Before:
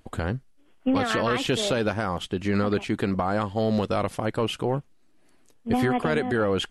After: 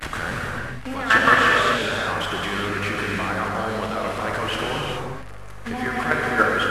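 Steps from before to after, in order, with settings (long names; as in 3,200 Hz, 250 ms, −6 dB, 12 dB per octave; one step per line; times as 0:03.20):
linear delta modulator 64 kbit/s, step −33.5 dBFS
in parallel at +0.5 dB: downward compressor 10 to 1, threshold −36 dBFS, peak gain reduction 17 dB
on the sum: mains hum 50 Hz, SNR 16 dB
parametric band 1,600 Hz +14 dB 1.8 octaves
hum removal 86.96 Hz, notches 10
output level in coarse steps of 14 dB
on a send: delay with a band-pass on its return 679 ms, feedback 70%, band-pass 690 Hz, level −22 dB
on the sum: reverb whose tail is shaped and stops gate 460 ms flat, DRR −3 dB
level −1 dB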